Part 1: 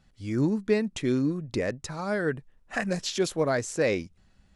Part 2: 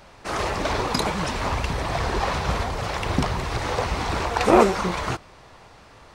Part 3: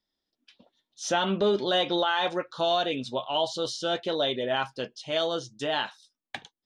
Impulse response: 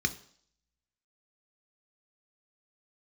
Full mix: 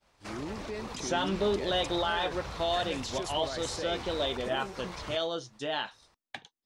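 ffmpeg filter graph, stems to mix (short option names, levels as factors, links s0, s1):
-filter_complex "[0:a]bass=f=250:g=-10,treble=f=4000:g=3,volume=0.447[s0];[1:a]highshelf=f=3300:g=6.5,acrossover=split=430|5900[s1][s2][s3];[s1]acompressor=threshold=0.0355:ratio=4[s4];[s2]acompressor=threshold=0.0282:ratio=4[s5];[s3]acompressor=threshold=0.00282:ratio=4[s6];[s4][s5][s6]amix=inputs=3:normalize=0,volume=0.299[s7];[2:a]volume=0.596[s8];[s0][s7]amix=inputs=2:normalize=0,agate=range=0.0224:threshold=0.00316:ratio=3:detection=peak,alimiter=level_in=1.78:limit=0.0631:level=0:latency=1:release=28,volume=0.562,volume=1[s9];[s8][s9]amix=inputs=2:normalize=0"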